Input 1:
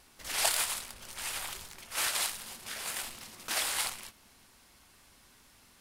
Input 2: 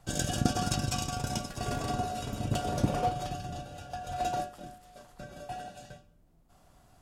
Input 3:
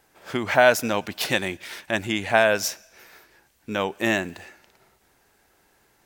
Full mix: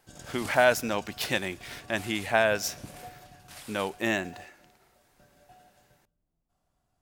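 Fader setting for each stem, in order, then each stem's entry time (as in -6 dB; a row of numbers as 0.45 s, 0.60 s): -15.5 dB, -16.5 dB, -5.0 dB; 0.00 s, 0.00 s, 0.00 s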